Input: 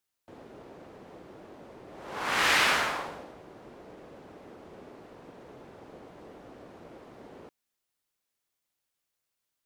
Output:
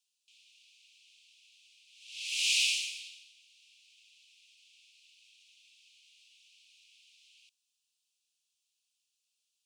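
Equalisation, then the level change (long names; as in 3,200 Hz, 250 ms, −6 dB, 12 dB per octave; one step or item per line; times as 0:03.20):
Butterworth high-pass 2,500 Hz 96 dB per octave
dynamic equaliser 3,500 Hz, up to −6 dB, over −45 dBFS, Q 0.9
Savitzky-Golay smoothing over 9 samples
+6.0 dB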